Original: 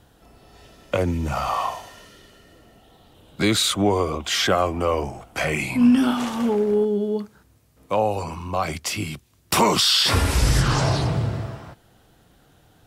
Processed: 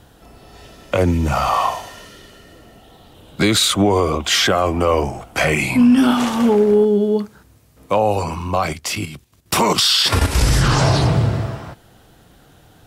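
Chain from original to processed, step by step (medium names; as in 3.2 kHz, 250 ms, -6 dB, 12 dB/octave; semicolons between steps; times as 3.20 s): 8.66–10.41 s: level held to a coarse grid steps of 10 dB; peak limiter -13 dBFS, peak gain reduction 6 dB; trim +7 dB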